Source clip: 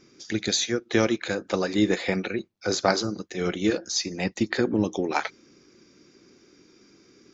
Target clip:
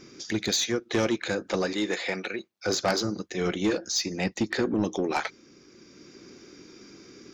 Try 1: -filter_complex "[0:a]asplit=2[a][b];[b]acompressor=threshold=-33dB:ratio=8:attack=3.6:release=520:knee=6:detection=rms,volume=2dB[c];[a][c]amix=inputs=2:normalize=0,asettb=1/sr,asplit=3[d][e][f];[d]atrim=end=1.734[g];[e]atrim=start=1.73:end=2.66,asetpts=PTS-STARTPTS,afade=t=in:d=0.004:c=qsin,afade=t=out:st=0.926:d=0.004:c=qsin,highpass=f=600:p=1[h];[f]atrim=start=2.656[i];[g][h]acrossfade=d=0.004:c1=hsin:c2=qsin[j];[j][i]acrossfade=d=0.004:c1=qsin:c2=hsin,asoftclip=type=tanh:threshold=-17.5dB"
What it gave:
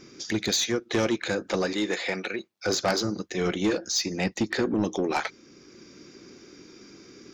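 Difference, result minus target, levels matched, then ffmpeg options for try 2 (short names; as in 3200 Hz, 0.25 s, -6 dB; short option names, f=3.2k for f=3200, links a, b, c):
compressor: peak gain reduction -9 dB
-filter_complex "[0:a]asplit=2[a][b];[b]acompressor=threshold=-43.5dB:ratio=8:attack=3.6:release=520:knee=6:detection=rms,volume=2dB[c];[a][c]amix=inputs=2:normalize=0,asettb=1/sr,asplit=3[d][e][f];[d]atrim=end=1.734[g];[e]atrim=start=1.73:end=2.66,asetpts=PTS-STARTPTS,afade=t=in:d=0.004:c=qsin,afade=t=out:st=0.926:d=0.004:c=qsin,highpass=f=600:p=1[h];[f]atrim=start=2.656[i];[g][h]acrossfade=d=0.004:c1=hsin:c2=qsin[j];[j][i]acrossfade=d=0.004:c1=qsin:c2=hsin,asoftclip=type=tanh:threshold=-17.5dB"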